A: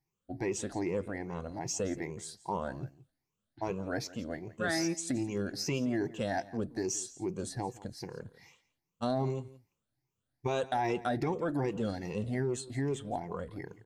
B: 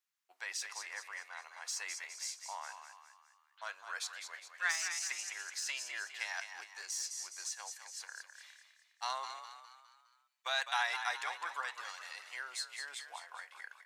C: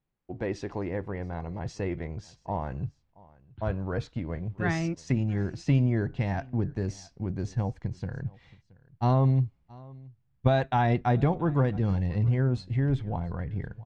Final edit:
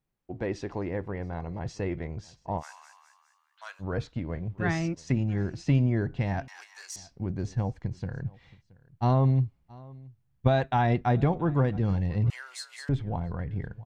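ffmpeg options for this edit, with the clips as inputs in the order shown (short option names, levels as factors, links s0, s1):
-filter_complex "[1:a]asplit=3[s0][s1][s2];[2:a]asplit=4[s3][s4][s5][s6];[s3]atrim=end=2.63[s7];[s0]atrim=start=2.57:end=3.85[s8];[s4]atrim=start=3.79:end=6.482[s9];[s1]atrim=start=6.478:end=6.962[s10];[s5]atrim=start=6.958:end=12.302[s11];[s2]atrim=start=12.298:end=12.892[s12];[s6]atrim=start=12.888[s13];[s7][s8]acrossfade=d=0.06:c1=tri:c2=tri[s14];[s14][s9]acrossfade=d=0.06:c1=tri:c2=tri[s15];[s15][s10]acrossfade=d=0.004:c1=hsin:c2=hsin[s16];[s16][s11]acrossfade=d=0.004:c1=hsin:c2=hsin[s17];[s17][s12]acrossfade=d=0.004:c1=hsin:c2=hsin[s18];[s18][s13]acrossfade=d=0.004:c1=hsin:c2=hsin"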